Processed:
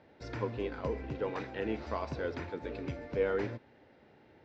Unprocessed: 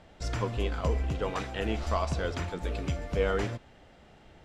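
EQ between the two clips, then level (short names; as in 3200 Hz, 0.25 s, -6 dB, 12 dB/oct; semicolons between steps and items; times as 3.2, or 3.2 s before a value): speaker cabinet 150–5200 Hz, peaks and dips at 180 Hz -9 dB, 690 Hz -8 dB, 1200 Hz -8 dB, 3100 Hz -7 dB; high shelf 2900 Hz -10.5 dB; 0.0 dB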